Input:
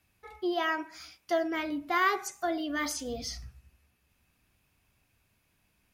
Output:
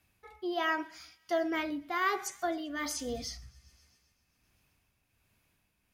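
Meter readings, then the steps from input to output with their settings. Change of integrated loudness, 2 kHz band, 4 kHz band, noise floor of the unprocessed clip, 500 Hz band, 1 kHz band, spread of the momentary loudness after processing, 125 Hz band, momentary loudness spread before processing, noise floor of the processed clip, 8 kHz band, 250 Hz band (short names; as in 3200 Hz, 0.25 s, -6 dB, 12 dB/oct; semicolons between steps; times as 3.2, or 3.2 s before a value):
-2.5 dB, -2.5 dB, -2.5 dB, -73 dBFS, -2.0 dB, -3.0 dB, 11 LU, -2.5 dB, 12 LU, -76 dBFS, -1.0 dB, -2.5 dB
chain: thin delay 0.131 s, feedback 74%, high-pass 2200 Hz, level -23 dB; tremolo 1.3 Hz, depth 48%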